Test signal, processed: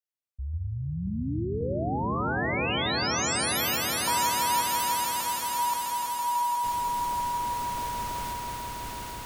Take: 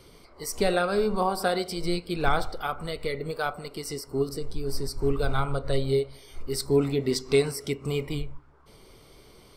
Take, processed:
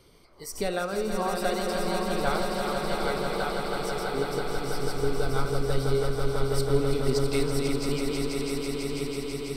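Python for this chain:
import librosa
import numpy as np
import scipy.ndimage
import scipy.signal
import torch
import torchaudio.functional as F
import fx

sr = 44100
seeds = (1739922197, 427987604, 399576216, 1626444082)

y = fx.reverse_delay_fb(x, sr, ms=536, feedback_pct=41, wet_db=-5.5)
y = fx.echo_swell(y, sr, ms=164, loudest=5, wet_db=-7.5)
y = y * 10.0 ** (-5.0 / 20.0)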